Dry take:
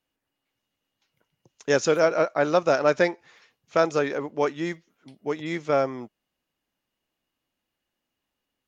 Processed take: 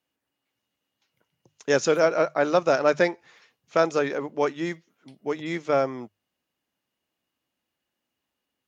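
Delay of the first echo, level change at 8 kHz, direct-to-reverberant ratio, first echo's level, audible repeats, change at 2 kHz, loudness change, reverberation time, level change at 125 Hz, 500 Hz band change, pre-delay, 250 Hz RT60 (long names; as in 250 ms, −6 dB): no echo audible, can't be measured, no reverb audible, no echo audible, no echo audible, 0.0 dB, 0.0 dB, no reverb audible, −1.5 dB, 0.0 dB, no reverb audible, no reverb audible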